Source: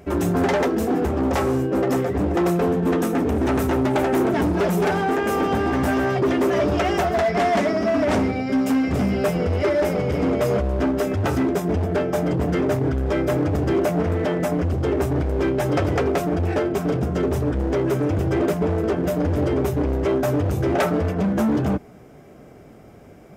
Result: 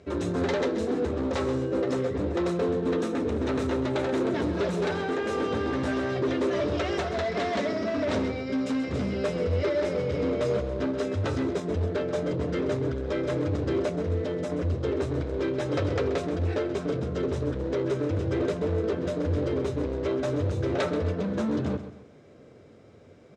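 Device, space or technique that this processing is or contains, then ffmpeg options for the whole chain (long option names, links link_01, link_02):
car door speaker: -filter_complex "[0:a]asettb=1/sr,asplit=3[link_01][link_02][link_03];[link_01]atrim=end=13.894[link_04];[link_02]atrim=start=13.89:end=14.5,asetpts=PTS-STARTPTS,afade=type=in:duration=0.004:curve=qsin,afade=type=out:start_time=0.606:duration=0.004:curve=qsin,equalizer=frequency=1600:width=0.43:gain=-5.5[link_05];[link_03]atrim=start=14.496[link_06];[link_04][link_05]acrossfade=duration=0.004:curve1=hsin:curve2=qsin[link_07];[link_07][link_06]acrossfade=duration=0.004:curve1=qsin:curve2=hsin,highpass=83,equalizer=frequency=89:width_type=q:width=4:gain=7,equalizer=frequency=180:width_type=q:width=4:gain=-3,equalizer=frequency=500:width_type=q:width=4:gain=6,equalizer=frequency=760:width_type=q:width=4:gain=-7,equalizer=frequency=3900:width_type=q:width=4:gain=9,lowpass=frequency=7800:width=0.5412,lowpass=frequency=7800:width=1.3066,aecho=1:1:131|262|393|524:0.251|0.0879|0.0308|0.0108,volume=-7.5dB"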